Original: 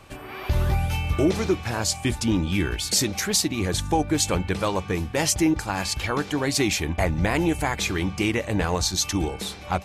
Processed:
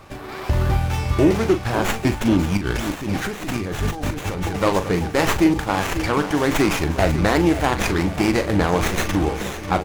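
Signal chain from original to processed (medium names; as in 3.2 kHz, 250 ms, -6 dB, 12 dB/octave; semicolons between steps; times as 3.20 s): bass shelf 170 Hz -3 dB; on a send: feedback delay 543 ms, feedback 54%, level -12 dB; 2.57–4.56 s: on the sum: compressor with a negative ratio -31 dBFS, ratio -1; doubling 40 ms -10 dB; sliding maximum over 9 samples; trim +5.5 dB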